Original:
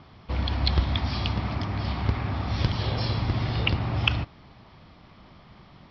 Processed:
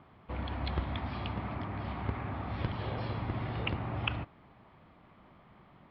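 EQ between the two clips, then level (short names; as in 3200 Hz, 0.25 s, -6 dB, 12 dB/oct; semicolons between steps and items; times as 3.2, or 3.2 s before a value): LPF 3000 Hz 12 dB/oct; air absorption 260 m; low shelf 150 Hz -9 dB; -4.0 dB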